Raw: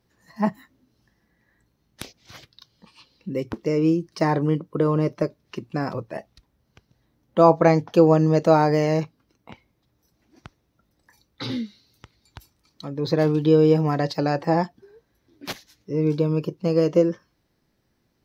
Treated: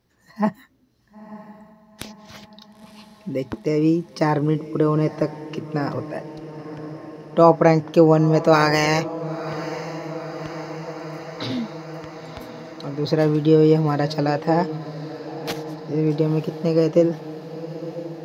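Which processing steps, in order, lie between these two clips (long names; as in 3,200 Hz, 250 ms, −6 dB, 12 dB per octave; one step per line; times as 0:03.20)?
0:08.52–0:09.01: ceiling on every frequency bin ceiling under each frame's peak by 18 dB
feedback delay with all-pass diffusion 960 ms, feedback 73%, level −14.5 dB
level +1.5 dB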